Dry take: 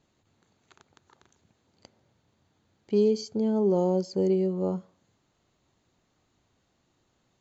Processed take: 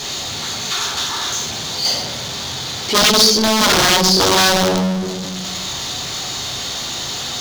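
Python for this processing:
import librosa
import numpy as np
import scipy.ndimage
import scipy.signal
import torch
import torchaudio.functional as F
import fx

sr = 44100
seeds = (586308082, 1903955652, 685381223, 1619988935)

y = fx.tilt_shelf(x, sr, db=-6.5, hz=720.0)
y = fx.room_shoebox(y, sr, seeds[0], volume_m3=130.0, walls='mixed', distance_m=3.3)
y = (np.mod(10.0 ** (12.0 / 20.0) * y + 1.0, 2.0) - 1.0) / 10.0 ** (12.0 / 20.0)
y = scipy.signal.sosfilt(scipy.signal.butter(2, 41.0, 'highpass', fs=sr, output='sos'), y)
y = fx.power_curve(y, sr, exponent=0.35)
y = fx.band_shelf(y, sr, hz=4600.0, db=9.0, octaves=1.3)
y = y * librosa.db_to_amplitude(-2.5)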